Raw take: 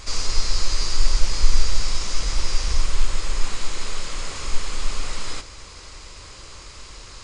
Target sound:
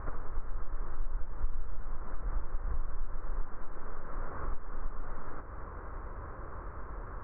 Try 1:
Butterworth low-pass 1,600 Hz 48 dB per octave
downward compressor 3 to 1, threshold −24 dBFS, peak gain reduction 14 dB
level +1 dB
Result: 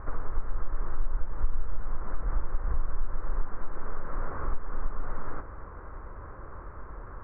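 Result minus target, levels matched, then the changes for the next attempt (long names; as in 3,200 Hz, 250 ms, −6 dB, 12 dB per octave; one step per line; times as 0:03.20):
downward compressor: peak gain reduction −5.5 dB
change: downward compressor 3 to 1, threshold −32 dBFS, peak gain reduction 19.5 dB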